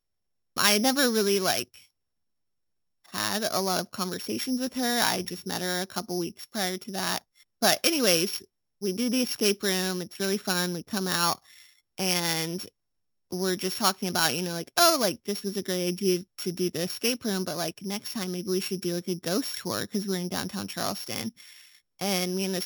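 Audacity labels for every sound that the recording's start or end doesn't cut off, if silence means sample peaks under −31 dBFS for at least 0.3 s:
0.570000	1.620000	sound
3.140000	7.180000	sound
7.620000	8.380000	sound
8.830000	11.340000	sound
11.980000	12.660000	sound
13.320000	21.290000	sound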